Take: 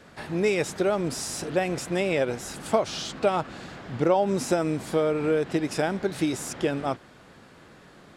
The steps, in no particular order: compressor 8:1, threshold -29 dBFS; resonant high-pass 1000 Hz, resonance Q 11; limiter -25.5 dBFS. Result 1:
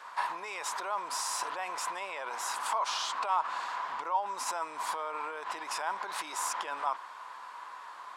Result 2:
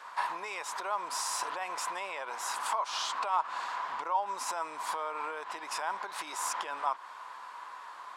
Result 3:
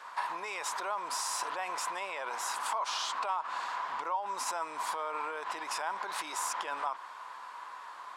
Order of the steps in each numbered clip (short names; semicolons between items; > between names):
limiter > compressor > resonant high-pass; compressor > limiter > resonant high-pass; limiter > resonant high-pass > compressor